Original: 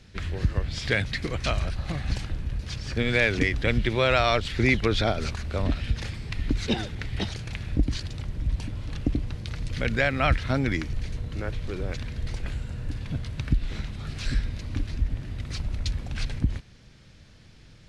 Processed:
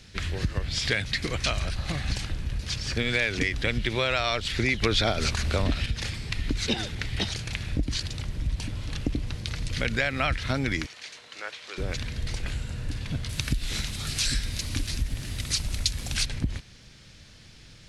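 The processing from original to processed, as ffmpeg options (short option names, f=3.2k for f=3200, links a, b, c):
-filter_complex "[0:a]asettb=1/sr,asplit=3[a][b][c];[a]atrim=end=10.864[d];[b]atrim=start=10.86:end=11.78,asetpts=PTS-STARTPTS,afade=t=in:d=0.004:c=qsin,afade=t=out:st=0.916:d=0.004:c=qsin,highpass=780,lowpass=7.8k[e];[c]atrim=start=11.776[f];[d][e]acrossfade=d=0.004:c1=hsin:c2=qsin[g];[g][f]acrossfade=d=0.004:c1=qsin:c2=hsin,asettb=1/sr,asplit=3[h][i][j];[h]atrim=end=13.294[k];[i]atrim=start=13.29:end=16.26,asetpts=PTS-STARTPTS,afade=t=in:d=0.004:c=qsin,afade=t=out:st=2.966:d=0.004:c=qsin,aemphasis=mode=production:type=75kf[l];[j]atrim=start=16.256[m];[k][l]acrossfade=d=0.004:c1=hsin:c2=qsin[n];[n][m]acrossfade=d=0.004:c1=qsin:c2=hsin,asplit=3[o][p][q];[o]atrim=end=4.812[r];[p]atrim=start=4.808:end=5.862,asetpts=PTS-STARTPTS,volume=7dB[s];[q]atrim=start=5.858[t];[r][s]acrossfade=d=0.004:c1=hsin:c2=hsin[u];[u][t]acrossfade=d=0.004:c1=hsin:c2=hsin,highshelf=f=2.1k:g=9,acompressor=threshold=-23dB:ratio=3"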